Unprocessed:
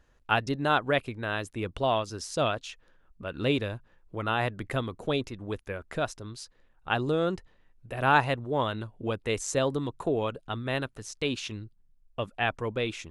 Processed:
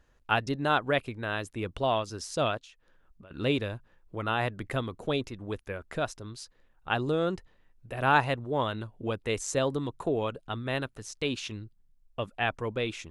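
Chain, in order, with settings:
0:02.57–0:03.31: downward compressor 12 to 1, threshold −49 dBFS, peak gain reduction 18.5 dB
level −1 dB

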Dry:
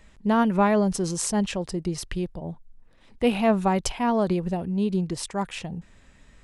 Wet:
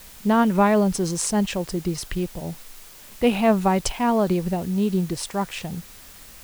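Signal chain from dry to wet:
bit-depth reduction 8 bits, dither triangular
level +2.5 dB

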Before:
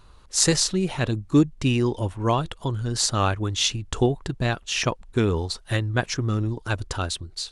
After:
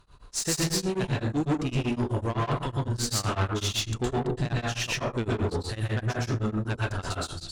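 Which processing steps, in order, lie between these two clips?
dense smooth reverb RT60 0.61 s, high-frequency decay 0.5×, pre-delay 105 ms, DRR −6 dB
tube saturation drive 17 dB, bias 0.25
tremolo along a rectified sine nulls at 7.9 Hz
level −4 dB

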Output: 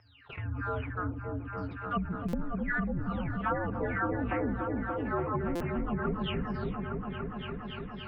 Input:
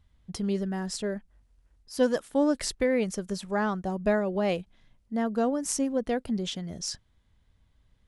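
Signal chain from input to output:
every frequency bin delayed by itself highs early, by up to 495 ms
dynamic equaliser 1,500 Hz, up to +6 dB, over −46 dBFS, Q 0.85
backwards echo 402 ms −22 dB
treble cut that deepens with the level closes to 330 Hz, closed at −21 dBFS
single-sideband voice off tune −310 Hz 240–3,000 Hz
noise gate −45 dBFS, range −34 dB
low-shelf EQ 340 Hz −11.5 dB
echo whose low-pass opens from repeat to repeat 288 ms, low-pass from 400 Hz, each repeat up 1 octave, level −3 dB
buffer that repeats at 0:02.28/0:05.55, samples 256, times 8
envelope flattener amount 50%
level +2 dB

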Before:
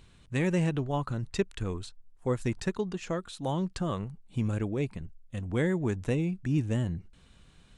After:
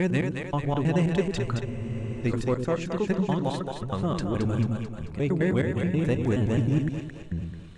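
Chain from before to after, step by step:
slices reordered back to front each 106 ms, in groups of 5
high-shelf EQ 7,600 Hz −9 dB
echo with a time of its own for lows and highs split 400 Hz, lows 99 ms, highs 220 ms, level −5 dB
in parallel at −3 dB: soft clipping −25.5 dBFS, distortion −12 dB
on the sum: frozen spectrum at 0:01.67, 0.57 s

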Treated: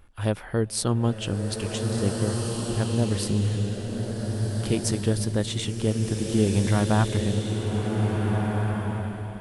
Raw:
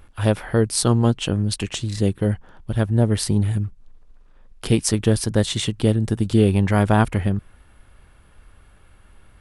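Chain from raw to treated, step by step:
slow-attack reverb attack 1,770 ms, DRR 1.5 dB
level −6.5 dB

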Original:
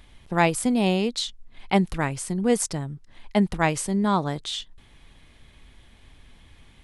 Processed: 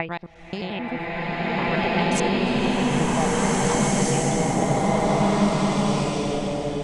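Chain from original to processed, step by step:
slices reordered back to front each 88 ms, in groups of 6
downward compressor, threshold −28 dBFS, peak gain reduction 13 dB
auto-filter low-pass sine 0.58 Hz 530–6,600 Hz
slow-attack reverb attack 1,970 ms, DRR −11.5 dB

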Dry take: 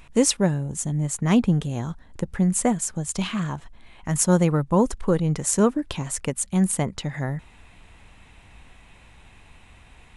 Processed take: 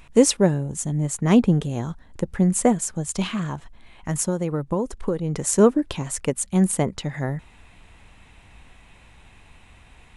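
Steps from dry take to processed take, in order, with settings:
dynamic equaliser 410 Hz, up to +6 dB, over −33 dBFS, Q 0.96
0:03.28–0:05.34: downward compressor 6 to 1, threshold −21 dBFS, peak gain reduction 11.5 dB

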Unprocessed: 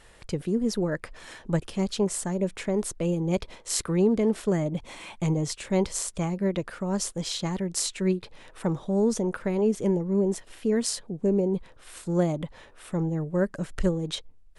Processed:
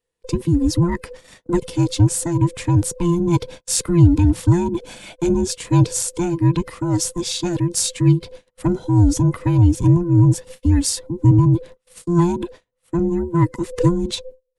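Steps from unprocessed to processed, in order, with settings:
frequency inversion band by band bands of 500 Hz
in parallel at −11 dB: soft clipping −23.5 dBFS, distortion −11 dB
on the sum: dynamic equaliser 130 Hz, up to +6 dB, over −38 dBFS, Q 1.5
noise gate −40 dBFS, range −34 dB
parametric band 1,200 Hz −8 dB 2.8 octaves
level +7.5 dB

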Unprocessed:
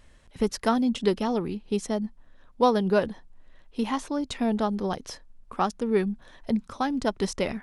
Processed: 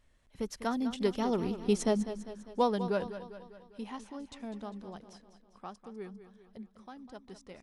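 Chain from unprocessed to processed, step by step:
source passing by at 0:01.81, 8 m/s, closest 3.3 metres
on a send: repeating echo 200 ms, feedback 53%, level −12 dB

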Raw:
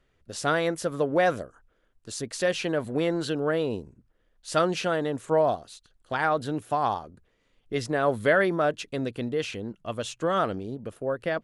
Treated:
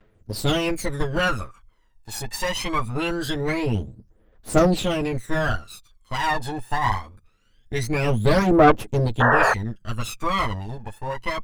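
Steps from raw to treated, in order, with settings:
lower of the sound and its delayed copy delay 9.3 ms
phase shifter 0.23 Hz, delay 1.2 ms, feedback 78%
sound drawn into the spectrogram noise, 0:09.20–0:09.54, 400–1,900 Hz −19 dBFS
level +1.5 dB

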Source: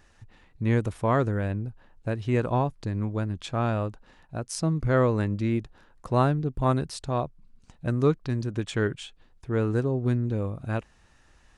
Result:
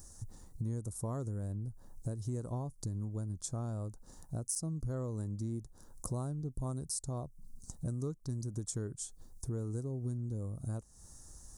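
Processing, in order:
de-essing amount 60%
drawn EQ curve 110 Hz 0 dB, 1,200 Hz −11 dB, 2,600 Hz −29 dB, 5,800 Hz +7 dB, 9,300 Hz +15 dB
downward compressor 5 to 1, threshold −42 dBFS, peak gain reduction 19 dB
level +5.5 dB

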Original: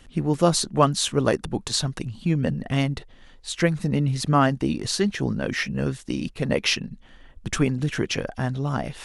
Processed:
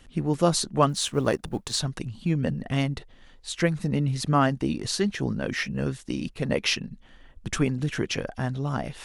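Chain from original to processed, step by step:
0:00.89–0:01.79: mu-law and A-law mismatch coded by A
level −2.5 dB

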